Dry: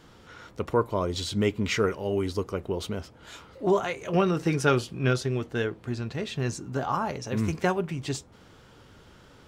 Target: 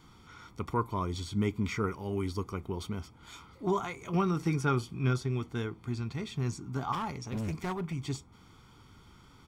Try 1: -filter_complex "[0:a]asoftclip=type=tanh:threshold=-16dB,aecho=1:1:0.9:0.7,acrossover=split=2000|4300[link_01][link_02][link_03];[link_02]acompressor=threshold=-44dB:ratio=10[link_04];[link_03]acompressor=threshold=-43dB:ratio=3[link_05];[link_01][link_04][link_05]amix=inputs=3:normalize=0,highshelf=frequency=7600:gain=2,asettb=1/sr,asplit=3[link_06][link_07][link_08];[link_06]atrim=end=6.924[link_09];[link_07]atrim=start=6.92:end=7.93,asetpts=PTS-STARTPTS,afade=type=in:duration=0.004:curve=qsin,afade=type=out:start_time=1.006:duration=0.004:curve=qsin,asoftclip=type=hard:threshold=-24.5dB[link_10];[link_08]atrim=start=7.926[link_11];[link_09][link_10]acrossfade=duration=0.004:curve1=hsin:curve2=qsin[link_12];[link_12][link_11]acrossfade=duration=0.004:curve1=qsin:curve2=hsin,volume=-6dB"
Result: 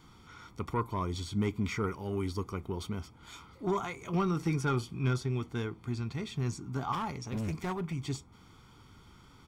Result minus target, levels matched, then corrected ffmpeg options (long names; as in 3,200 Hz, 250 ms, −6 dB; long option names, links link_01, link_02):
soft clipping: distortion +15 dB
-filter_complex "[0:a]asoftclip=type=tanh:threshold=-6.5dB,aecho=1:1:0.9:0.7,acrossover=split=2000|4300[link_01][link_02][link_03];[link_02]acompressor=threshold=-44dB:ratio=10[link_04];[link_03]acompressor=threshold=-43dB:ratio=3[link_05];[link_01][link_04][link_05]amix=inputs=3:normalize=0,highshelf=frequency=7600:gain=2,asettb=1/sr,asplit=3[link_06][link_07][link_08];[link_06]atrim=end=6.924[link_09];[link_07]atrim=start=6.92:end=7.93,asetpts=PTS-STARTPTS,afade=type=in:duration=0.004:curve=qsin,afade=type=out:start_time=1.006:duration=0.004:curve=qsin,asoftclip=type=hard:threshold=-24.5dB[link_10];[link_08]atrim=start=7.926[link_11];[link_09][link_10]acrossfade=duration=0.004:curve1=hsin:curve2=qsin[link_12];[link_12][link_11]acrossfade=duration=0.004:curve1=qsin:curve2=hsin,volume=-6dB"